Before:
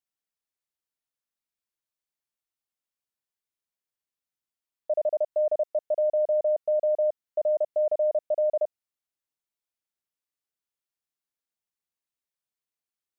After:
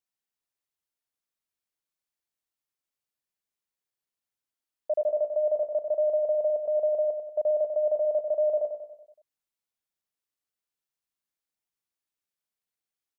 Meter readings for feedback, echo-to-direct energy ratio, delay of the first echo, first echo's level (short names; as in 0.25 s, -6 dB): 52%, -5.5 dB, 94 ms, -7.0 dB